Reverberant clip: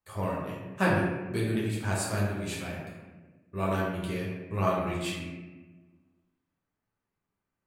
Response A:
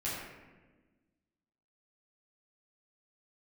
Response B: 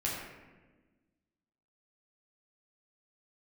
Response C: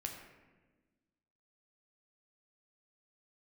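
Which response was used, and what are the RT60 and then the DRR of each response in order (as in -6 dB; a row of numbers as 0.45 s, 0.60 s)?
B; 1.3 s, 1.3 s, 1.3 s; -10.0 dB, -6.0 dB, 1.5 dB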